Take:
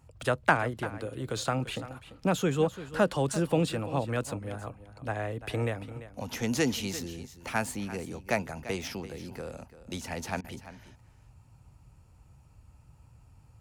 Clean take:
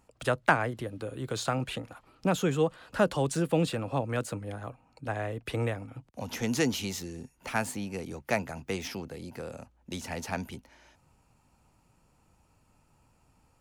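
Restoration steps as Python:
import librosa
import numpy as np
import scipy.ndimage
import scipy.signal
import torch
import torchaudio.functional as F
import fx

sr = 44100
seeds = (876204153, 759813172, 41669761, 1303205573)

y = fx.fix_interpolate(x, sr, at_s=(10.41,), length_ms=31.0)
y = fx.noise_reduce(y, sr, print_start_s=12.04, print_end_s=12.54, reduce_db=10.0)
y = fx.fix_echo_inverse(y, sr, delay_ms=342, level_db=-14.5)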